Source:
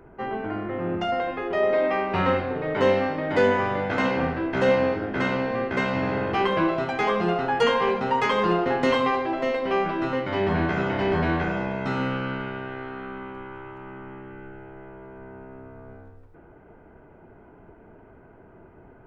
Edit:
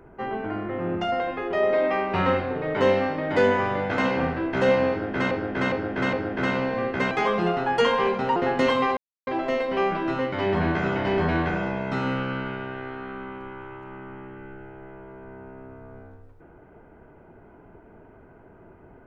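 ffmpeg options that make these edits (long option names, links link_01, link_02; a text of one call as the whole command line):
ffmpeg -i in.wav -filter_complex "[0:a]asplit=7[link_01][link_02][link_03][link_04][link_05][link_06][link_07];[link_01]atrim=end=5.312[link_08];[link_02]atrim=start=4.898:end=5.312[link_09];[link_03]atrim=start=4.898:end=5.312[link_10];[link_04]atrim=start=4.898:end=5.882[link_11];[link_05]atrim=start=6.928:end=8.182[link_12];[link_06]atrim=start=8.598:end=9.21,asetpts=PTS-STARTPTS,afade=type=out:start_time=0.608:duration=0.004:curve=hsin,apad=pad_dur=0.3[link_13];[link_07]atrim=start=9.21,asetpts=PTS-STARTPTS,afade=type=in:duration=0.004:curve=hsin[link_14];[link_08][link_09]acrossfade=duration=0.004:curve1=hsin:curve2=hsin[link_15];[link_15][link_10]acrossfade=duration=0.004:curve1=hsin:curve2=hsin[link_16];[link_16][link_11]acrossfade=duration=0.004:curve1=hsin:curve2=hsin[link_17];[link_17][link_12]acrossfade=duration=0.004:curve1=hsin:curve2=hsin[link_18];[link_13][link_14]concat=n=2:v=0:a=1[link_19];[link_18][link_19]acrossfade=duration=0.004:curve1=hsin:curve2=hsin" out.wav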